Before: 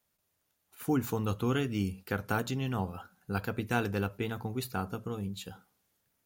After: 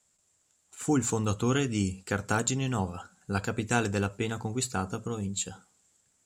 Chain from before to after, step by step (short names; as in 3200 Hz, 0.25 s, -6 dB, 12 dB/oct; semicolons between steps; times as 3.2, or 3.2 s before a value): synth low-pass 7600 Hz, resonance Q 11; gain +3 dB